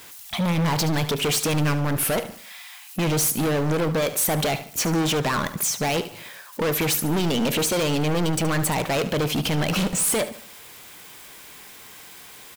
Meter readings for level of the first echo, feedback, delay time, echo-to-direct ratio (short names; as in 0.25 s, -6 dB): -13.5 dB, 38%, 73 ms, -13.0 dB